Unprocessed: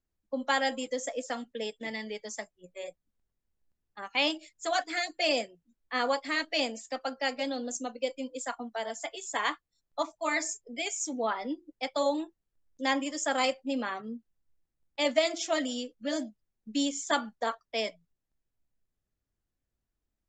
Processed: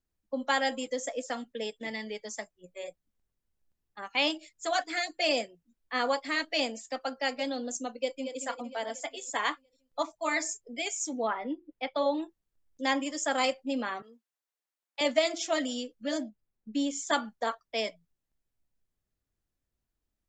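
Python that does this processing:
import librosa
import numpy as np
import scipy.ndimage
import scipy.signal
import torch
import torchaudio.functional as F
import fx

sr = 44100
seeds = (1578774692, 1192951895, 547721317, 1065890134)

y = fx.echo_throw(x, sr, start_s=7.98, length_s=0.4, ms=230, feedback_pct=55, wet_db=-8.5)
y = fx.lowpass(y, sr, hz=fx.line((11.27, 2700.0), (12.21, 4300.0)), slope=24, at=(11.27, 12.21), fade=0.02)
y = fx.highpass(y, sr, hz=720.0, slope=12, at=(14.02, 15.01))
y = fx.high_shelf(y, sr, hz=fx.line((16.17, 3900.0), (16.89, 2900.0)), db=-10.5, at=(16.17, 16.89), fade=0.02)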